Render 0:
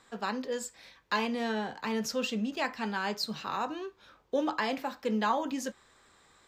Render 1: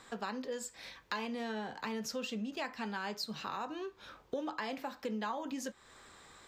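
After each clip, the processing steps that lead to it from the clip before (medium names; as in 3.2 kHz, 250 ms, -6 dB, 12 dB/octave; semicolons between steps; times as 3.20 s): compression 3:1, threshold -45 dBFS, peak gain reduction 16 dB; trim +5 dB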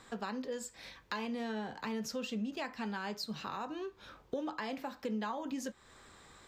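bass shelf 290 Hz +5.5 dB; trim -1.5 dB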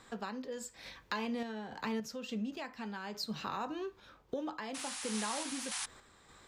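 painted sound noise, 4.74–5.86 s, 710–11000 Hz -40 dBFS; random-step tremolo 3.5 Hz; trim +2 dB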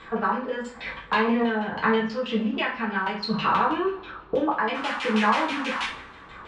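LFO low-pass saw down 6.2 Hz 850–3100 Hz; two-slope reverb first 0.37 s, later 2.3 s, from -26 dB, DRR -5 dB; trim +7.5 dB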